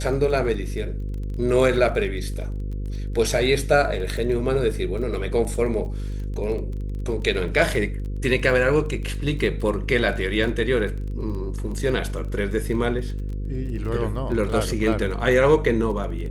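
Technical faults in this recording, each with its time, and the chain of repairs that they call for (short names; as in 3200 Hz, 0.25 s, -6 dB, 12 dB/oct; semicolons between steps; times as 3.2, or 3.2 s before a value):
buzz 50 Hz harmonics 10 -28 dBFS
crackle 21/s -32 dBFS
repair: de-click; de-hum 50 Hz, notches 10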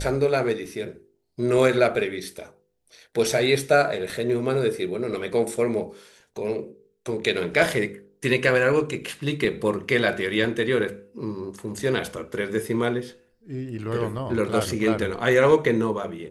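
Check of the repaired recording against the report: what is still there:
none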